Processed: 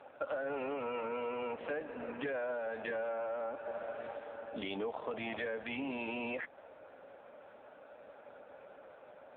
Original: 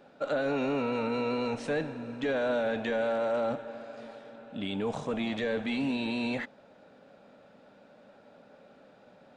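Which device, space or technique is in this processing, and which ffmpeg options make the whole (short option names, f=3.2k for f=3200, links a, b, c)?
voicemail: -af "highpass=440,lowpass=2.8k,acompressor=threshold=-40dB:ratio=10,volume=6.5dB" -ar 8000 -c:a libopencore_amrnb -b:a 5900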